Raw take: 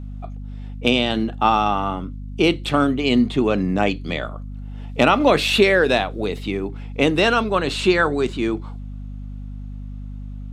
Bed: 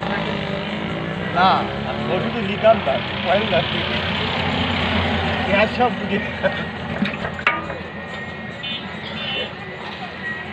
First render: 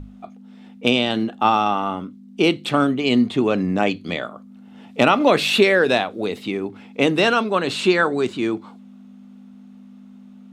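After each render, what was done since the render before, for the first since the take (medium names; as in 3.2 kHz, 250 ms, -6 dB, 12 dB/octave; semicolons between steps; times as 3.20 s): hum notches 50/100/150 Hz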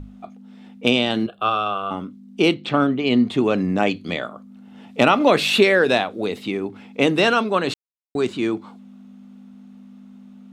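1.26–1.91 s: static phaser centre 1.3 kHz, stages 8; 2.54–3.27 s: distance through air 120 m; 7.74–8.15 s: mute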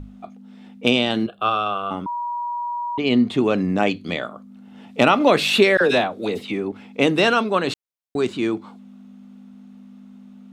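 2.06–2.98 s: bleep 960 Hz -23.5 dBFS; 5.77–6.72 s: phase dispersion lows, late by 41 ms, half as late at 1.2 kHz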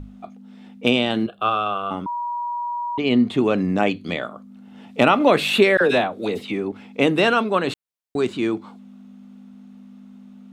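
dynamic bell 5.4 kHz, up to -7 dB, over -41 dBFS, Q 1.5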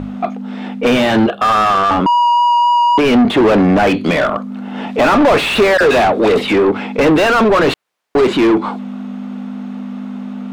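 vibrato 3.8 Hz 9 cents; overdrive pedal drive 35 dB, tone 1.1 kHz, clips at -2 dBFS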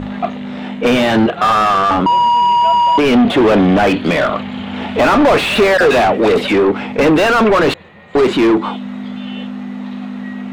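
add bed -10 dB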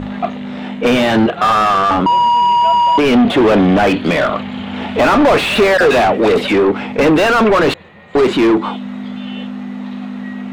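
no audible change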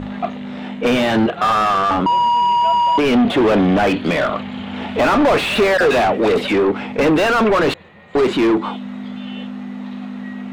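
trim -3.5 dB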